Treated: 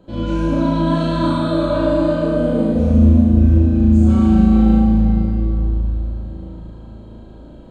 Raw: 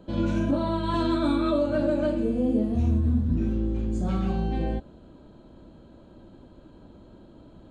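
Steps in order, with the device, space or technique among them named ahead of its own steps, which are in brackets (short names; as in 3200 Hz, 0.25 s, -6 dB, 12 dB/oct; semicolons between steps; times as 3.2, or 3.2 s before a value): tunnel (flutter echo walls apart 6.3 m, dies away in 0.79 s; reverb RT60 4.1 s, pre-delay 28 ms, DRR -3 dB)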